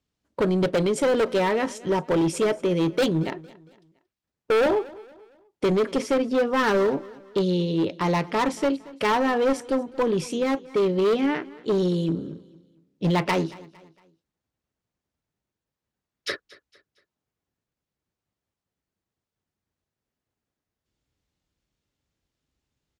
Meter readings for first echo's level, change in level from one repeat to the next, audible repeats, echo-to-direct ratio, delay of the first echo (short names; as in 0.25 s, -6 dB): -21.0 dB, -8.0 dB, 2, -20.5 dB, 0.229 s